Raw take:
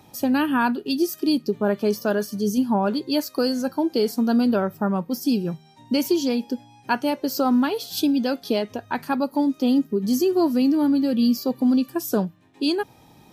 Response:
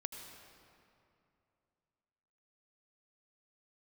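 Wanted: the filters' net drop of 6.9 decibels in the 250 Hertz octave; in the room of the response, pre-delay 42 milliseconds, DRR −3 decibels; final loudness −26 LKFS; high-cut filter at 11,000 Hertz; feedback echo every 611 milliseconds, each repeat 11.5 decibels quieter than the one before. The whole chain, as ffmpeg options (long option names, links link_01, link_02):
-filter_complex "[0:a]lowpass=11000,equalizer=frequency=250:width_type=o:gain=-8,aecho=1:1:611|1222|1833:0.266|0.0718|0.0194,asplit=2[link_01][link_02];[1:a]atrim=start_sample=2205,adelay=42[link_03];[link_02][link_03]afir=irnorm=-1:irlink=0,volume=4.5dB[link_04];[link_01][link_04]amix=inputs=2:normalize=0,volume=-4dB"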